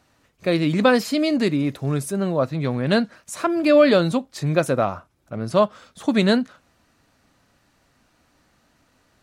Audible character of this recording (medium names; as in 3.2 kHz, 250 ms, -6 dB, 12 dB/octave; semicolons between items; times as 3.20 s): noise floor -63 dBFS; spectral tilt -5.0 dB/octave